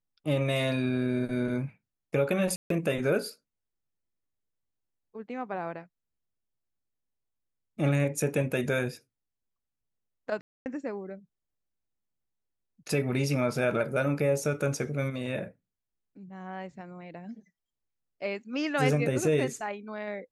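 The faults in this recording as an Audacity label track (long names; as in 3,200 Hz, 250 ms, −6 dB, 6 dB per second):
2.560000	2.700000	drop-out 143 ms
10.410000	10.660000	drop-out 249 ms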